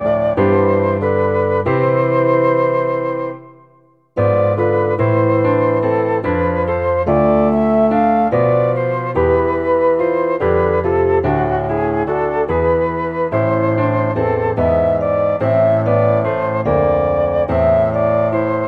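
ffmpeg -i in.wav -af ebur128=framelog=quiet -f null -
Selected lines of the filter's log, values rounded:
Integrated loudness:
  I:         -15.5 LUFS
  Threshold: -25.6 LUFS
Loudness range:
  LRA:         2.0 LU
  Threshold: -35.7 LUFS
  LRA low:   -16.8 LUFS
  LRA high:  -14.8 LUFS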